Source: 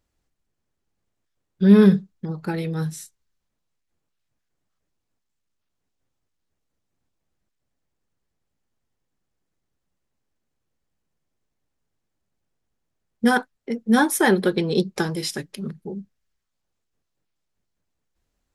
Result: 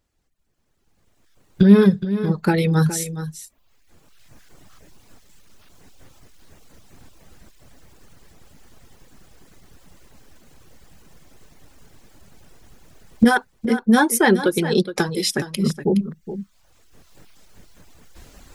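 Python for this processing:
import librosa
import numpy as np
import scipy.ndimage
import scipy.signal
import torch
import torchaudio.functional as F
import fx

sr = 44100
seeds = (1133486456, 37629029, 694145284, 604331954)

p1 = fx.recorder_agc(x, sr, target_db=-10.5, rise_db_per_s=14.0, max_gain_db=30)
p2 = fx.dereverb_blind(p1, sr, rt60_s=0.95)
p3 = p2 + fx.echo_single(p2, sr, ms=418, db=-12.0, dry=0)
y = p3 * librosa.db_to_amplitude(2.5)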